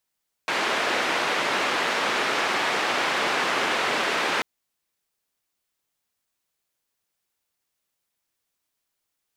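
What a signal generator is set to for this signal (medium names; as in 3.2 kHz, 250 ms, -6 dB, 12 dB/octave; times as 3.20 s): noise band 310–2200 Hz, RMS -24.5 dBFS 3.94 s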